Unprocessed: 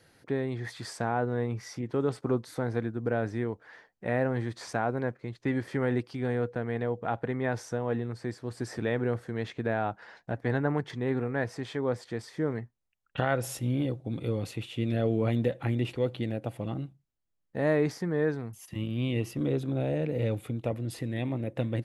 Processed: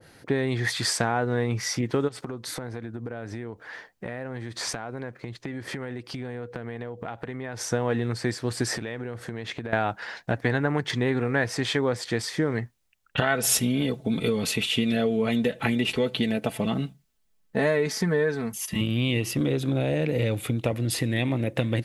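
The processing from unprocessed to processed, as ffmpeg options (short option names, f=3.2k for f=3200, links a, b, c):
-filter_complex "[0:a]asplit=3[a][b][c];[a]afade=t=out:st=2.07:d=0.02[d];[b]acompressor=threshold=-39dB:ratio=16:attack=3.2:release=140:knee=1:detection=peak,afade=t=in:st=2.07:d=0.02,afade=t=out:st=7.6:d=0.02[e];[c]afade=t=in:st=7.6:d=0.02[f];[d][e][f]amix=inputs=3:normalize=0,asettb=1/sr,asplit=3[g][h][i];[g]atrim=end=8.744[j];[h]atrim=start=8.74:end=9.73,asetpts=PTS-STARTPTS,afade=t=in:d=0.004:c=qsin,afade=t=out:st=0.986:d=0.004:c=qsin,acompressor=threshold=-38dB:ratio=16:attack=3.2:release=140:knee=1:detection=peak[k];[i]atrim=start=9.726[l];[j][k]acrossfade=d=0.004:c1=hsin:c2=qsin[m];[m][l]acrossfade=d=0.004:c1=qsin:c2=hsin,asettb=1/sr,asplit=3[n][o][p];[n]atrim=end=13.214[q];[o]atrim=start=13.21:end=18.81,asetpts=PTS-STARTPTS,afade=t=in:d=0.004:c=qsin,afade=t=out:st=5.596:d=0.004:c=qsin,aecho=1:1:4.6:0.65,atrim=end_sample=246960[r];[p]atrim=start=18.806[s];[q][r]acrossfade=d=0.004:c1=hsin:c2=qsin[t];[t][s]acrossfade=d=0.004:c1=qsin:c2=hsin,acompressor=threshold=-30dB:ratio=6,adynamicequalizer=threshold=0.00251:dfrequency=1500:dqfactor=0.7:tfrequency=1500:tqfactor=0.7:attack=5:release=100:ratio=0.375:range=4:mode=boostabove:tftype=highshelf,volume=9dB"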